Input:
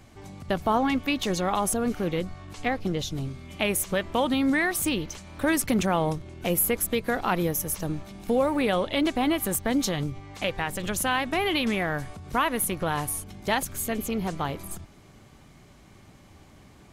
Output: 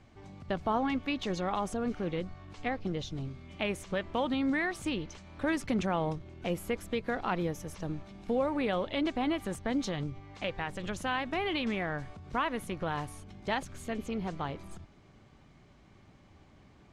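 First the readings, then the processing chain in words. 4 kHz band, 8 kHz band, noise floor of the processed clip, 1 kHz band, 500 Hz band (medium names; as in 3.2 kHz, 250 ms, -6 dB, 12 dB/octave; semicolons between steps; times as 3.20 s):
-8.0 dB, -18.5 dB, -59 dBFS, -6.5 dB, -6.5 dB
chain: distance through air 100 m; trim -6 dB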